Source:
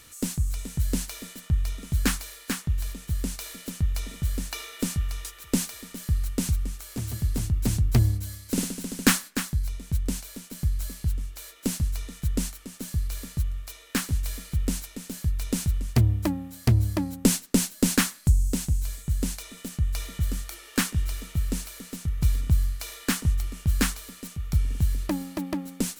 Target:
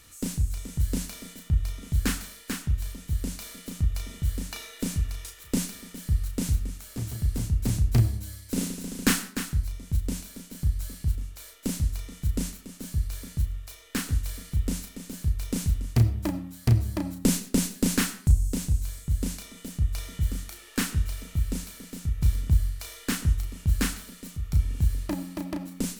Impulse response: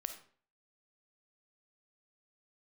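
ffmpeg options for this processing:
-filter_complex "[0:a]lowshelf=f=110:g=5.5,asplit=2[s0][s1];[1:a]atrim=start_sample=2205,adelay=34[s2];[s1][s2]afir=irnorm=-1:irlink=0,volume=0.668[s3];[s0][s3]amix=inputs=2:normalize=0,volume=0.631"

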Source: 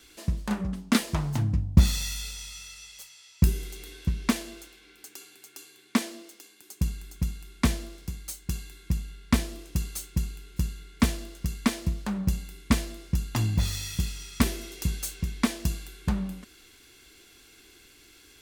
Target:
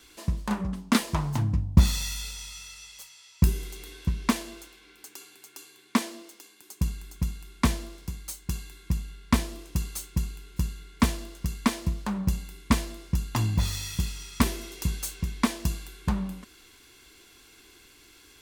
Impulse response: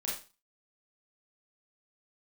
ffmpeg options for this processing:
-af "equalizer=f=1000:t=o:w=0.41:g=6.5"

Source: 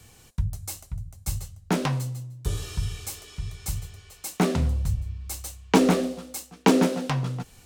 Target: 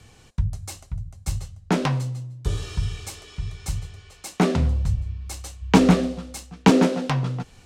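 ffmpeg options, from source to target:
-filter_complex "[0:a]adynamicsmooth=sensitivity=3:basefreq=6900,asplit=3[s0][s1][s2];[s0]afade=t=out:st=5.61:d=0.02[s3];[s1]asubboost=boost=4.5:cutoff=150,afade=t=in:st=5.61:d=0.02,afade=t=out:st=6.7:d=0.02[s4];[s2]afade=t=in:st=6.7:d=0.02[s5];[s3][s4][s5]amix=inputs=3:normalize=0,volume=1.41"

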